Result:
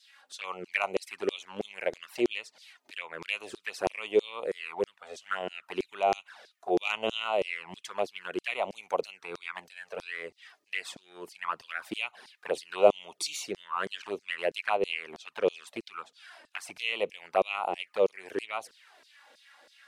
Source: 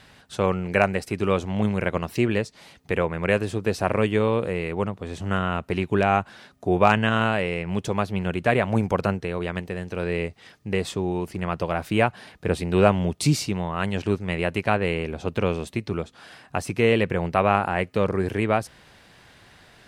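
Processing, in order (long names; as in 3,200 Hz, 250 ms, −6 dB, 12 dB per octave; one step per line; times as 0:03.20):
flanger swept by the level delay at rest 3.9 ms, full sweep at −18.5 dBFS
auto-filter high-pass saw down 3.1 Hz 350–5,500 Hz
level −4.5 dB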